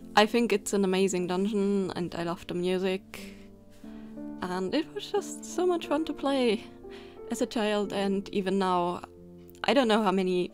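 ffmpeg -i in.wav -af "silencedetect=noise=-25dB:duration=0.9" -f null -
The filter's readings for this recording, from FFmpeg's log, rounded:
silence_start: 3.15
silence_end: 4.42 | silence_duration: 1.27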